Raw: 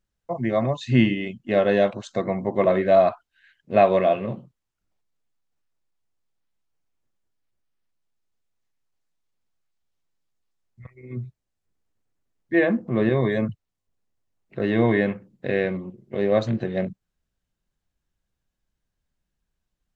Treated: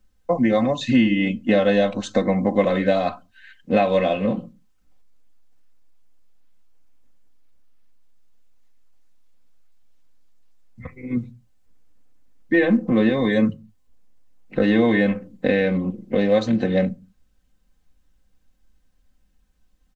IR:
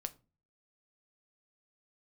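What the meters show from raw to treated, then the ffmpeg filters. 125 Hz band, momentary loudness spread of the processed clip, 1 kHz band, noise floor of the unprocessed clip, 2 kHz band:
0.0 dB, 9 LU, −1.0 dB, −82 dBFS, +3.0 dB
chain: -filter_complex "[0:a]acrossover=split=80|2900[link_01][link_02][link_03];[link_01]acompressor=threshold=-53dB:ratio=4[link_04];[link_02]acompressor=threshold=-28dB:ratio=4[link_05];[link_03]acompressor=threshold=-43dB:ratio=4[link_06];[link_04][link_05][link_06]amix=inputs=3:normalize=0,aecho=1:1:3.9:0.74,asplit=2[link_07][link_08];[1:a]atrim=start_sample=2205,afade=type=out:start_time=0.26:duration=0.01,atrim=end_sample=11907,lowshelf=frequency=390:gain=9.5[link_09];[link_08][link_09]afir=irnorm=-1:irlink=0,volume=-3dB[link_10];[link_07][link_10]amix=inputs=2:normalize=0,volume=4.5dB"

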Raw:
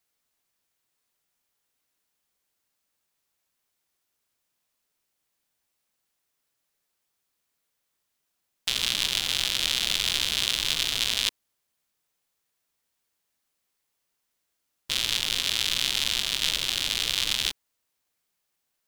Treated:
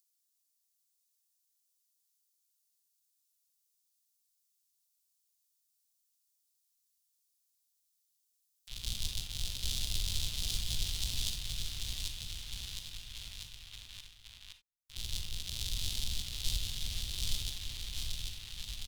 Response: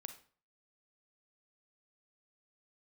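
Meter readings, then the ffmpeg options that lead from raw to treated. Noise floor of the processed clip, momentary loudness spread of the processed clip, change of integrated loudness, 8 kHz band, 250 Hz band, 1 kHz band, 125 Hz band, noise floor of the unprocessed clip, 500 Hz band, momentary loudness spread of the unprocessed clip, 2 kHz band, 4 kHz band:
−79 dBFS, 13 LU, −13.5 dB, −9.0 dB, −8.0 dB, −18.5 dB, +4.5 dB, −79 dBFS, −15.5 dB, 4 LU, −18.0 dB, −12.5 dB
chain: -filter_complex "[0:a]equalizer=frequency=500:width_type=o:width=0.59:gain=-5.5,agate=range=-24dB:threshold=-25dB:ratio=16:detection=peak,aecho=1:1:790|1501|2141|2717|3235:0.631|0.398|0.251|0.158|0.1[link_01];[1:a]atrim=start_sample=2205,afade=type=out:start_time=0.14:duration=0.01,atrim=end_sample=6615[link_02];[link_01][link_02]afir=irnorm=-1:irlink=0,acrossover=split=620|4100[link_03][link_04][link_05];[link_04]alimiter=level_in=14.5dB:limit=-24dB:level=0:latency=1:release=397,volume=-14.5dB[link_06];[link_05]acompressor=mode=upward:threshold=-55dB:ratio=2.5[link_07];[link_03][link_06][link_07]amix=inputs=3:normalize=0,asubboost=boost=9:cutoff=91"

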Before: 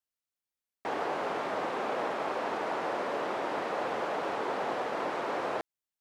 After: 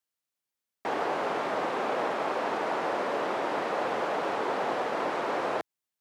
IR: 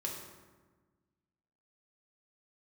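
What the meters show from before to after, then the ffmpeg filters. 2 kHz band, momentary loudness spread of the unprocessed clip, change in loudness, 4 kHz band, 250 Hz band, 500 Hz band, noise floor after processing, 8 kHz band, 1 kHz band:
+3.0 dB, 2 LU, +3.0 dB, +3.0 dB, +3.0 dB, +3.0 dB, below −85 dBFS, +3.0 dB, +3.0 dB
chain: -af "highpass=85,volume=3dB"

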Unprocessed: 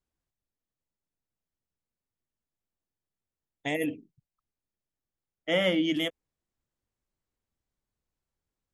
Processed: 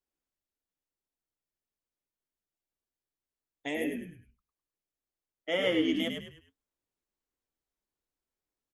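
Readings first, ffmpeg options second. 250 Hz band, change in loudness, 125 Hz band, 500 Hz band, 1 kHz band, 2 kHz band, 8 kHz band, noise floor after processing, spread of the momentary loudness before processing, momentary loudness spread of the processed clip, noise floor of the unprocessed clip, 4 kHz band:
−1.5 dB, −3.0 dB, −6.5 dB, −2.0 dB, −4.0 dB, −3.0 dB, −3.5 dB, below −85 dBFS, 14 LU, 19 LU, below −85 dBFS, −3.0 dB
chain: -filter_complex "[0:a]lowshelf=frequency=230:width_type=q:width=1.5:gain=-7,asplit=5[link_01][link_02][link_03][link_04][link_05];[link_02]adelay=103,afreqshift=-60,volume=-5.5dB[link_06];[link_03]adelay=206,afreqshift=-120,volume=-14.4dB[link_07];[link_04]adelay=309,afreqshift=-180,volume=-23.2dB[link_08];[link_05]adelay=412,afreqshift=-240,volume=-32.1dB[link_09];[link_01][link_06][link_07][link_08][link_09]amix=inputs=5:normalize=0,flanger=delay=4.5:depth=2.3:regen=-72:speed=1.8:shape=sinusoidal"

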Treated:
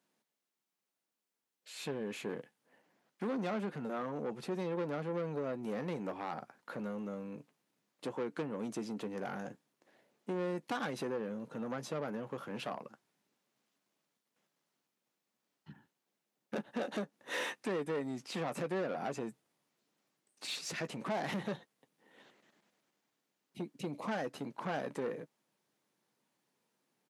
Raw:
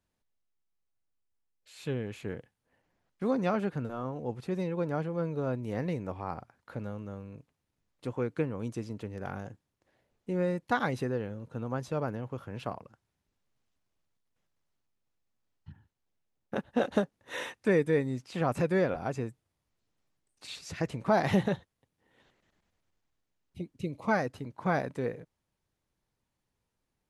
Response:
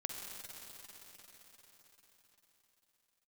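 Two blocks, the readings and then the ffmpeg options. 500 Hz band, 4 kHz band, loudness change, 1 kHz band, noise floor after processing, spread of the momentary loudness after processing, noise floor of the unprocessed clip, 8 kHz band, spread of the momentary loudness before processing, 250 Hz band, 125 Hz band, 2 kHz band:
−6.5 dB, +0.5 dB, −6.5 dB, −6.0 dB, below −85 dBFS, 9 LU, −84 dBFS, +2.0 dB, 15 LU, −6.5 dB, −11.0 dB, −5.5 dB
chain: -filter_complex "[0:a]aeval=exprs='0.224*sin(PI/2*1.58*val(0)/0.224)':channel_layout=same,asplit=2[link_01][link_02];[link_02]adelay=14,volume=-13dB[link_03];[link_01][link_03]amix=inputs=2:normalize=0,acompressor=threshold=-25dB:ratio=6,asoftclip=type=tanh:threshold=-27.5dB,highpass=frequency=180:width=0.5412,highpass=frequency=180:width=1.3066,volume=-3.5dB"

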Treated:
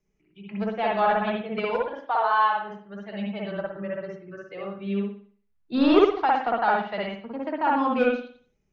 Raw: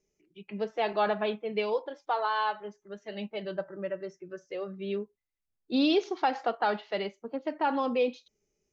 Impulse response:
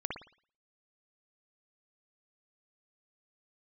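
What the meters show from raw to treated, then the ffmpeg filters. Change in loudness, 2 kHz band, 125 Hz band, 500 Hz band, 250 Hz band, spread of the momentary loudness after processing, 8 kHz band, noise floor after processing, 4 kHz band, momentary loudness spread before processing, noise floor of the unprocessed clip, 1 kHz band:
+6.0 dB, +6.5 dB, +9.0 dB, +4.5 dB, +6.5 dB, 16 LU, can't be measured, −71 dBFS, +0.5 dB, 13 LU, −83 dBFS, +7.5 dB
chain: -filter_complex "[0:a]lowpass=frequency=1300:poles=1,acrossover=split=270|650[link_01][link_02][link_03];[link_02]acrusher=bits=3:mix=0:aa=0.5[link_04];[link_01][link_04][link_03]amix=inputs=3:normalize=0[link_05];[1:a]atrim=start_sample=2205[link_06];[link_05][link_06]afir=irnorm=-1:irlink=0,volume=8dB"

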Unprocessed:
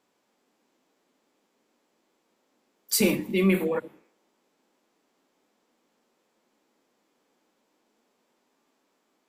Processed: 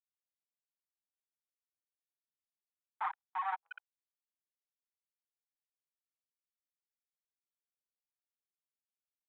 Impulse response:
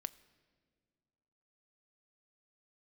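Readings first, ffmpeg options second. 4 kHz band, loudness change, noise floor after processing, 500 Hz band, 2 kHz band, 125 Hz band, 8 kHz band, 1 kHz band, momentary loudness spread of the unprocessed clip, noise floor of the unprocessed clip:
−28.5 dB, −14.5 dB, below −85 dBFS, −37.5 dB, −13.5 dB, below −40 dB, below −40 dB, +4.0 dB, 7 LU, −74 dBFS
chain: -af "afftfilt=real='re*gte(hypot(re,im),0.398)':imag='im*gte(hypot(re,im),0.398)':win_size=1024:overlap=0.75,aresample=11025,asoftclip=type=hard:threshold=-24dB,aresample=44100,asuperpass=centerf=1400:order=20:qfactor=0.81,asoftclip=type=tanh:threshold=-33dB,afwtdn=0.000631,volume=8dB"

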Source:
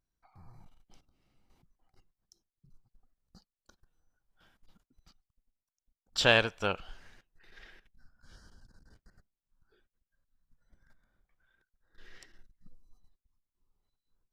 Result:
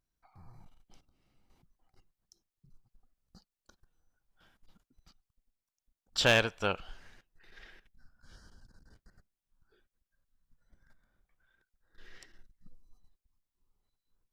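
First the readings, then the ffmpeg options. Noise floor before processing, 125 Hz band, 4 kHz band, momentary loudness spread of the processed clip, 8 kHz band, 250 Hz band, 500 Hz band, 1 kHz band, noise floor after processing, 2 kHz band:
below −85 dBFS, +1.0 dB, −1.0 dB, 12 LU, +1.5 dB, 0.0 dB, −1.0 dB, −1.5 dB, below −85 dBFS, −1.0 dB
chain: -af "asoftclip=type=hard:threshold=-15.5dB"

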